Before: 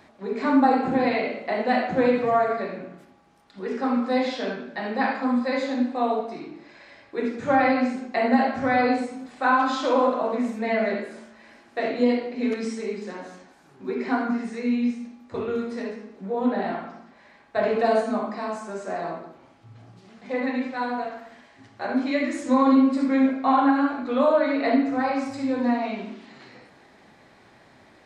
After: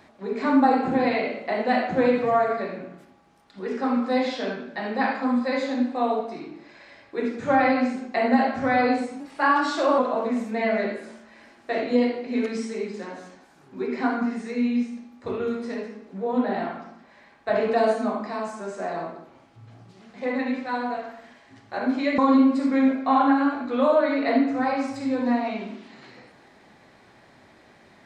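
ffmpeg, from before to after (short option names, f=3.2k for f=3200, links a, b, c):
-filter_complex "[0:a]asplit=4[a][b][c][d];[a]atrim=end=9.204[e];[b]atrim=start=9.2:end=10.06,asetpts=PTS-STARTPTS,asetrate=48510,aresample=44100,atrim=end_sample=34478,asetpts=PTS-STARTPTS[f];[c]atrim=start=10.056:end=22.262[g];[d]atrim=start=22.558[h];[e][f]acrossfade=d=0.004:c1=hsin:c2=hsin[i];[i][g]acrossfade=d=0.004:c1=hsin:c2=hsin[j];[j][h]acrossfade=d=0.004:c1=hsin:c2=hsin"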